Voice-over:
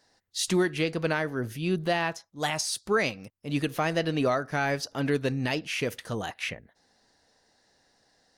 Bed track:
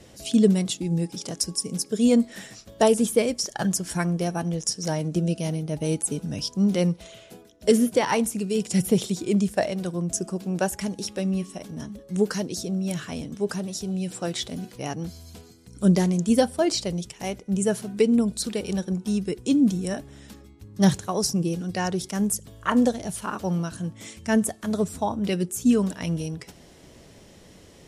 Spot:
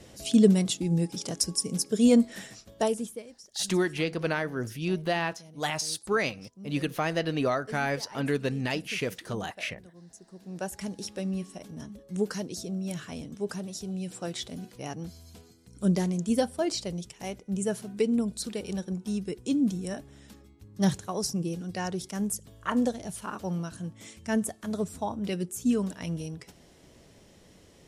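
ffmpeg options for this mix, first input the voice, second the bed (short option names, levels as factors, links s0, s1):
-filter_complex "[0:a]adelay=3200,volume=0.841[s0];[1:a]volume=6.68,afade=t=out:st=2.3:d=0.93:silence=0.0749894,afade=t=in:st=10.27:d=0.63:silence=0.133352[s1];[s0][s1]amix=inputs=2:normalize=0"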